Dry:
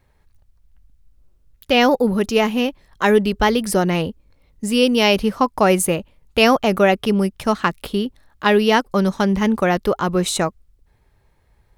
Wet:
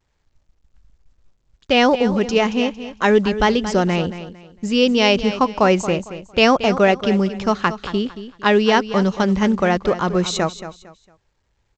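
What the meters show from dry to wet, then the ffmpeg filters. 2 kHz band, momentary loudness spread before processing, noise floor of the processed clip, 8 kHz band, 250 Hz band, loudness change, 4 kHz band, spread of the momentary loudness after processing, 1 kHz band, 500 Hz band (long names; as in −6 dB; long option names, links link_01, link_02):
+0.5 dB, 9 LU, −67 dBFS, −5.0 dB, 0.0 dB, 0.0 dB, +0.5 dB, 10 LU, 0.0 dB, +0.5 dB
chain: -af "agate=range=-11dB:threshold=-50dB:ratio=16:detection=peak,aecho=1:1:227|454|681:0.237|0.0664|0.0186" -ar 16000 -c:a pcm_alaw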